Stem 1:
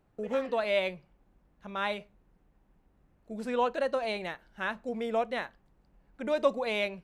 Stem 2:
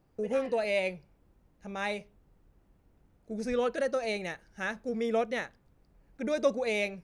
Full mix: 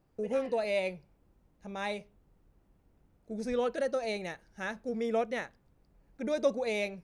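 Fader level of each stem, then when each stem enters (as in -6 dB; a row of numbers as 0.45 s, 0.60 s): -18.5 dB, -2.5 dB; 0.00 s, 0.00 s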